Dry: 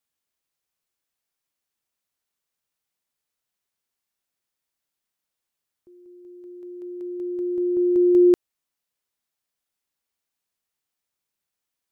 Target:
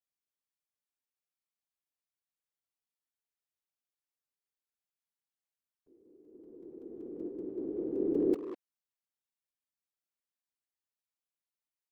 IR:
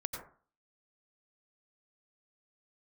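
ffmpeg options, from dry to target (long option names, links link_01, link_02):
-filter_complex "[0:a]asettb=1/sr,asplit=3[link_01][link_02][link_03];[link_01]atrim=end=6.334[link_04];[link_02]atrim=start=6.33:end=7.29,asetpts=PTS-STARTPTS,afade=type=in:duration=0.004:curve=qsin,afade=type=out:start_time=0.956:duration=0.004:curve=qsin,lowshelf=frequency=390:gain=6.5[link_05];[link_03]atrim=start=7.286[link_06];[link_04][link_05]acrossfade=duration=0.004:curve1=hsin:curve2=qsin[link_07];[link_07][link_06]acrossfade=duration=0.004:curve1=qsin:curve2=hsin,afftfilt=real='hypot(re,im)*cos(2*PI*random(0))':imag='hypot(re,im)*sin(2*PI*random(1))':win_size=512:overlap=0.75,asplit=2[link_08][link_09];[link_09]adelay=200,highpass=300,lowpass=3400,asoftclip=type=hard:threshold=-18.5dB,volume=-9dB[link_10];[link_08][link_10]amix=inputs=2:normalize=0,volume=-8.5dB"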